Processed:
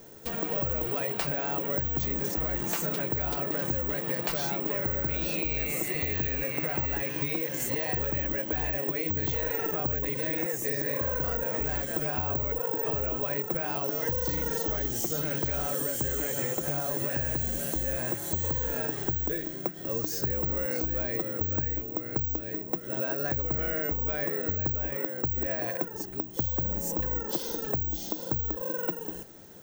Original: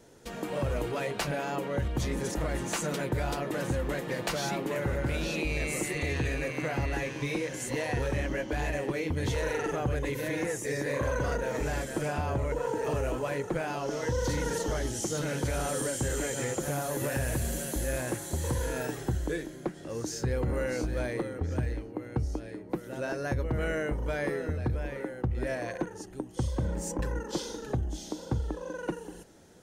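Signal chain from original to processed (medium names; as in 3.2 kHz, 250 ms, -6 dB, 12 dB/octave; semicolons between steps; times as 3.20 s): compression, threshold -34 dBFS, peak gain reduction 9 dB; careless resampling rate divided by 2×, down filtered, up zero stuff; trim +4 dB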